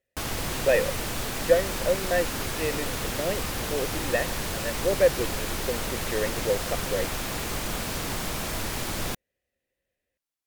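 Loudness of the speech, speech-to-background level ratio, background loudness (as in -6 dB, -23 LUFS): -29.0 LUFS, 1.0 dB, -30.0 LUFS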